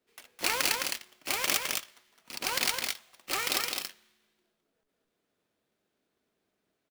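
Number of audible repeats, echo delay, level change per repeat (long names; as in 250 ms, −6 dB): 1, 211 ms, repeats not evenly spaced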